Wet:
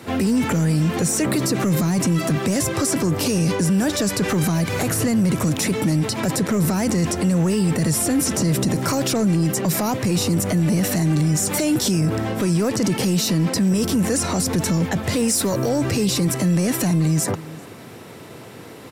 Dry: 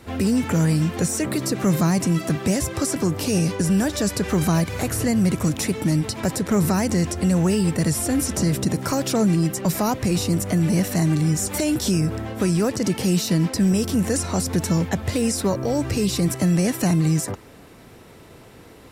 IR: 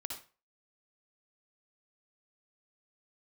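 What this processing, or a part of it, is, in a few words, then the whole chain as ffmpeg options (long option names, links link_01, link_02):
soft clipper into limiter: -filter_complex "[0:a]asettb=1/sr,asplit=3[link_01][link_02][link_03];[link_01]atrim=end=15.284[link_04];[link_02]atrim=start=15.28:end=15.69,asetpts=PTS-STARTPTS,afade=type=in:duration=0.004:curve=qsin,afade=type=out:start_time=0.406:duration=0.004:curve=qsin,aemphasis=mode=production:type=cd[link_05];[link_03]atrim=start=15.686[link_06];[link_04][link_05]acrossfade=duration=0.004:curve1=hsin:curve2=qsin[link_07];[link_07][link_06]acrossfade=duration=0.004:curve1=qsin:curve2=hsin,highpass=frequency=100:width=0.5412,highpass=frequency=100:width=1.3066,asplit=2[link_08][link_09];[link_09]adelay=396.5,volume=-24dB,highshelf=frequency=4000:gain=-8.92[link_10];[link_08][link_10]amix=inputs=2:normalize=0,asoftclip=type=tanh:threshold=-12.5dB,alimiter=limit=-20dB:level=0:latency=1:release=16,volume=7dB"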